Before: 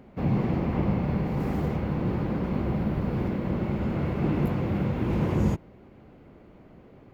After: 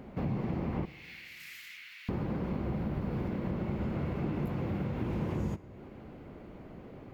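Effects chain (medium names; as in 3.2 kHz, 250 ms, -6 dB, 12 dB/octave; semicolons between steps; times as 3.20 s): 0.85–2.09 s: steep high-pass 2 kHz 36 dB/octave; compression 3:1, threshold -37 dBFS, peak gain reduction 13.5 dB; reverberation RT60 1.9 s, pre-delay 17 ms, DRR 16 dB; trim +3 dB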